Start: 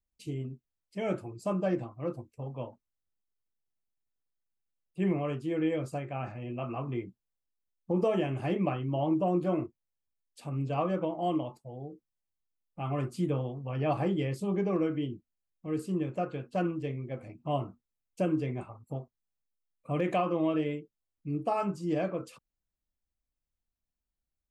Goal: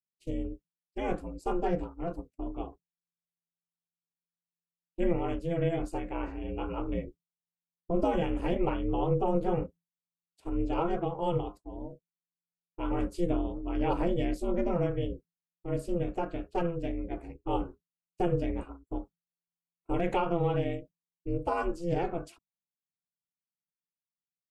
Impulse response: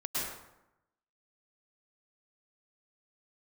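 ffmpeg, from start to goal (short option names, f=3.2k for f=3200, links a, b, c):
-af "agate=range=-33dB:threshold=-44dB:ratio=3:detection=peak,lowshelf=f=120:g=10.5,aeval=exprs='val(0)*sin(2*PI*170*n/s)':c=same,volume=2dB"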